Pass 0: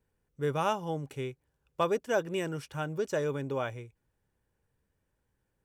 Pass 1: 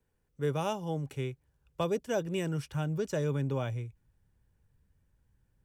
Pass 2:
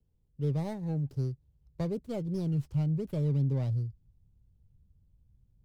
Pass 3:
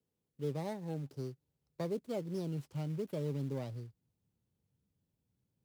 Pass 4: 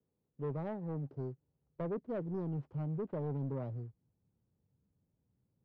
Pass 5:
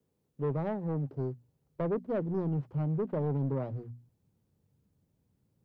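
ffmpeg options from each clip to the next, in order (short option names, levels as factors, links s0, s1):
-filter_complex "[0:a]asubboost=boost=3.5:cutoff=210,acrossover=split=180|850|2300[s0][s1][s2][s3];[s2]acompressor=threshold=0.00447:ratio=6[s4];[s0][s1][s4][s3]amix=inputs=4:normalize=0"
-filter_complex "[0:a]bass=f=250:g=13,treble=f=4000:g=-6,acrossover=split=970[s0][s1];[s1]aeval=exprs='abs(val(0))':c=same[s2];[s0][s2]amix=inputs=2:normalize=0,volume=0.473"
-filter_complex "[0:a]highpass=250,asplit=2[s0][s1];[s1]acrusher=bits=4:mode=log:mix=0:aa=0.000001,volume=0.631[s2];[s0][s2]amix=inputs=2:normalize=0,volume=0.562"
-af "lowpass=1100,asoftclip=type=tanh:threshold=0.0188,volume=1.41"
-af "bandreject=f=60:t=h:w=6,bandreject=f=120:t=h:w=6,bandreject=f=180:t=h:w=6,bandreject=f=240:t=h:w=6,volume=2.11"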